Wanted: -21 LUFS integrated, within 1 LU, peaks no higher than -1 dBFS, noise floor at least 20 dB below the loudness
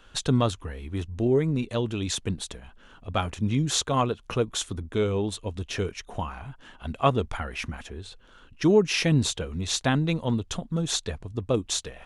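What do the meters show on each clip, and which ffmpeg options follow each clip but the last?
loudness -27.0 LUFS; peak level -8.5 dBFS; loudness target -21.0 LUFS
-> -af "volume=2"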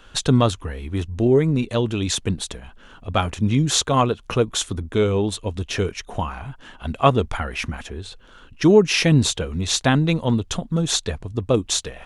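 loudness -21.0 LUFS; peak level -2.5 dBFS; noise floor -48 dBFS

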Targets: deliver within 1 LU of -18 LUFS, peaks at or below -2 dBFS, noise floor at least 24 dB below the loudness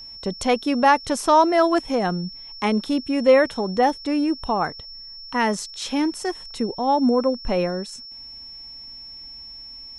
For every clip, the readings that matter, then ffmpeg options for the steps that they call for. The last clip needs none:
steady tone 5.4 kHz; tone level -37 dBFS; loudness -21.5 LUFS; peak level -4.5 dBFS; loudness target -18.0 LUFS
-> -af "bandreject=f=5400:w=30"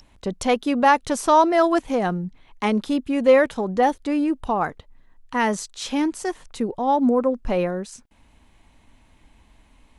steady tone not found; loudness -21.5 LUFS; peak level -4.5 dBFS; loudness target -18.0 LUFS
-> -af "volume=1.5,alimiter=limit=0.794:level=0:latency=1"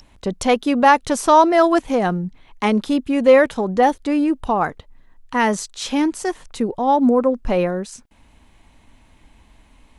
loudness -18.0 LUFS; peak level -2.0 dBFS; noise floor -53 dBFS

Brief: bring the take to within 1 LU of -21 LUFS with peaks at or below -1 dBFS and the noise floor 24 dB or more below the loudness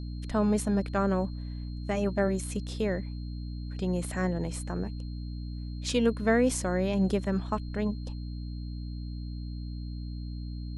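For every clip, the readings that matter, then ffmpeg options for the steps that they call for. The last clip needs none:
hum 60 Hz; highest harmonic 300 Hz; hum level -34 dBFS; steady tone 4.2 kHz; tone level -55 dBFS; loudness -31.0 LUFS; peak level -12.5 dBFS; loudness target -21.0 LUFS
-> -af "bandreject=f=60:t=h:w=6,bandreject=f=120:t=h:w=6,bandreject=f=180:t=h:w=6,bandreject=f=240:t=h:w=6,bandreject=f=300:t=h:w=6"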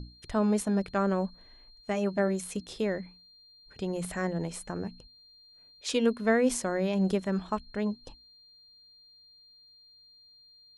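hum not found; steady tone 4.2 kHz; tone level -55 dBFS
-> -af "bandreject=f=4200:w=30"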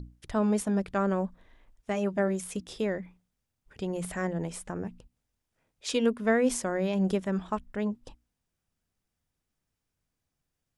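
steady tone not found; loudness -30.0 LUFS; peak level -13.0 dBFS; loudness target -21.0 LUFS
-> -af "volume=2.82"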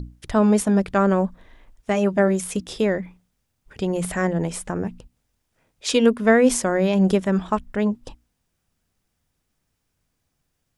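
loudness -21.0 LUFS; peak level -4.0 dBFS; noise floor -75 dBFS

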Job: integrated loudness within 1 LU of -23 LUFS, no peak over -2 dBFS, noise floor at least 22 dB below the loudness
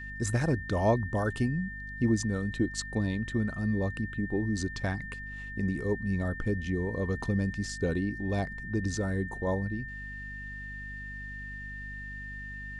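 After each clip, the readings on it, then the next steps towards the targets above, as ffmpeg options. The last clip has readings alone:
hum 50 Hz; highest harmonic 250 Hz; hum level -42 dBFS; steady tone 1.8 kHz; tone level -40 dBFS; loudness -32.0 LUFS; peak level -14.0 dBFS; loudness target -23.0 LUFS
-> -af "bandreject=f=50:t=h:w=6,bandreject=f=100:t=h:w=6,bandreject=f=150:t=h:w=6,bandreject=f=200:t=h:w=6,bandreject=f=250:t=h:w=6"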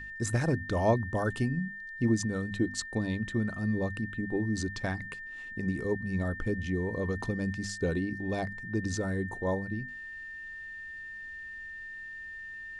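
hum not found; steady tone 1.8 kHz; tone level -40 dBFS
-> -af "bandreject=f=1800:w=30"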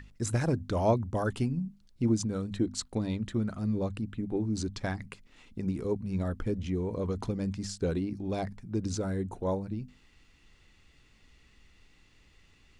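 steady tone not found; loudness -32.5 LUFS; peak level -13.0 dBFS; loudness target -23.0 LUFS
-> -af "volume=2.99"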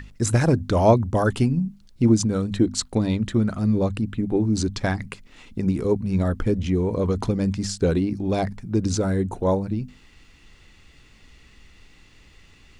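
loudness -23.0 LUFS; peak level -3.5 dBFS; noise floor -53 dBFS

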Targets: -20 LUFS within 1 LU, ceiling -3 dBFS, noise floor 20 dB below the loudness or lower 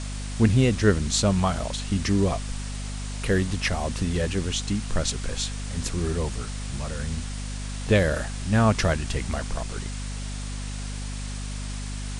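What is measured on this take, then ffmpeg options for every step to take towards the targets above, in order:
hum 50 Hz; highest harmonic 250 Hz; hum level -30 dBFS; noise floor -33 dBFS; noise floor target -47 dBFS; loudness -26.5 LUFS; peak level -7.0 dBFS; loudness target -20.0 LUFS
-> -af "bandreject=f=50:t=h:w=6,bandreject=f=100:t=h:w=6,bandreject=f=150:t=h:w=6,bandreject=f=200:t=h:w=6,bandreject=f=250:t=h:w=6"
-af "afftdn=nr=14:nf=-33"
-af "volume=2.11,alimiter=limit=0.708:level=0:latency=1"

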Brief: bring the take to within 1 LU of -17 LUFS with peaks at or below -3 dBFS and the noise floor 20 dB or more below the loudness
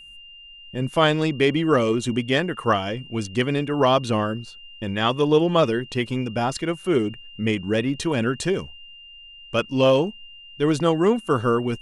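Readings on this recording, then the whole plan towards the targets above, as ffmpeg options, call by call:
steady tone 2.8 kHz; tone level -42 dBFS; loudness -22.5 LUFS; peak level -5.5 dBFS; loudness target -17.0 LUFS
-> -af "bandreject=f=2800:w=30"
-af "volume=1.88,alimiter=limit=0.708:level=0:latency=1"

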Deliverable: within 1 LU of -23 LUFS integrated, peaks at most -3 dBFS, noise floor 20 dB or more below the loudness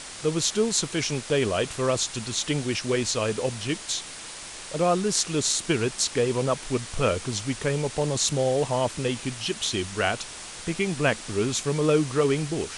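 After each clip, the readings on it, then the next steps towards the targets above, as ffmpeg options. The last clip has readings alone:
noise floor -40 dBFS; noise floor target -46 dBFS; loudness -25.5 LUFS; peak level -6.0 dBFS; loudness target -23.0 LUFS
-> -af "afftdn=nr=6:nf=-40"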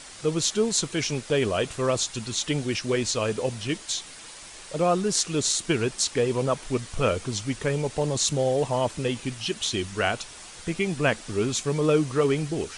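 noise floor -44 dBFS; noise floor target -46 dBFS
-> -af "afftdn=nr=6:nf=-44"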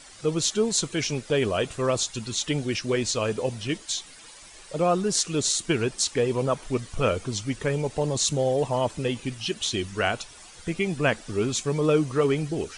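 noise floor -47 dBFS; loudness -26.0 LUFS; peak level -6.5 dBFS; loudness target -23.0 LUFS
-> -af "volume=1.41"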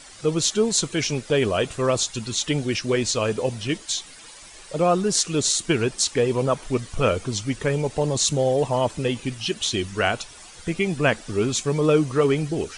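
loudness -23.0 LUFS; peak level -3.5 dBFS; noise floor -44 dBFS

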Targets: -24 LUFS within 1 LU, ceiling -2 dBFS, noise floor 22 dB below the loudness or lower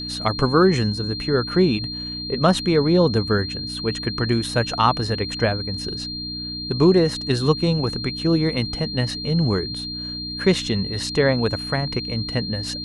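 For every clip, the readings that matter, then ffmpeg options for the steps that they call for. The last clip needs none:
hum 60 Hz; highest harmonic 300 Hz; hum level -33 dBFS; steady tone 4.2 kHz; tone level -29 dBFS; loudness -21.5 LUFS; peak level -3.5 dBFS; loudness target -24.0 LUFS
-> -af "bandreject=f=60:t=h:w=4,bandreject=f=120:t=h:w=4,bandreject=f=180:t=h:w=4,bandreject=f=240:t=h:w=4,bandreject=f=300:t=h:w=4"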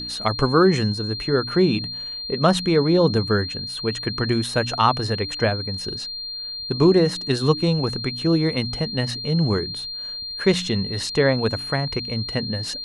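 hum not found; steady tone 4.2 kHz; tone level -29 dBFS
-> -af "bandreject=f=4200:w=30"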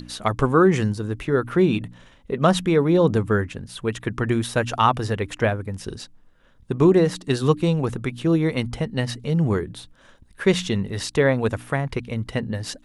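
steady tone not found; loudness -22.0 LUFS; peak level -4.0 dBFS; loudness target -24.0 LUFS
-> -af "volume=0.794"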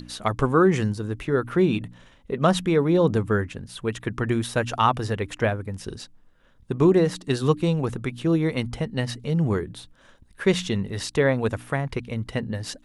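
loudness -24.0 LUFS; peak level -6.0 dBFS; noise floor -56 dBFS

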